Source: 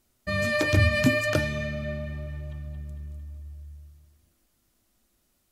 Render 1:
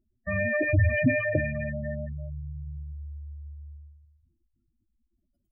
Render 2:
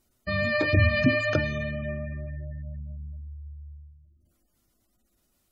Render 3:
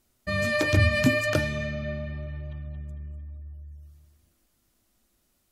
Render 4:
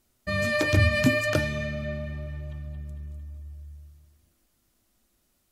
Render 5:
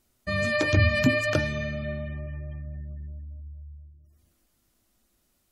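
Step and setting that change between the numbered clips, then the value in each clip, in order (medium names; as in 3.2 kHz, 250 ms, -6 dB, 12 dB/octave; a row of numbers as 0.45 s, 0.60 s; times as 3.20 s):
spectral gate, under each frame's peak: -10 dB, -25 dB, -50 dB, -60 dB, -35 dB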